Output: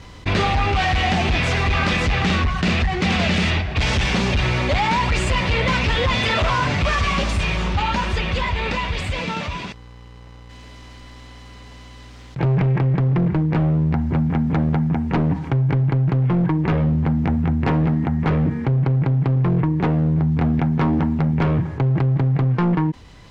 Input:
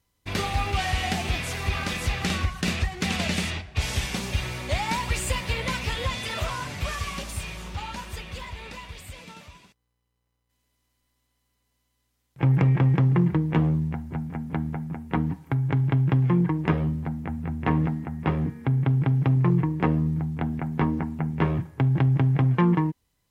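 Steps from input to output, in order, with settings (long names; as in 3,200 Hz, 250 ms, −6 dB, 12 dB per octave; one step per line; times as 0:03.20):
speech leveller within 4 dB 0.5 s
hard clipping −22.5 dBFS, distortion −10 dB
high-frequency loss of the air 140 metres
envelope flattener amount 50%
level +7 dB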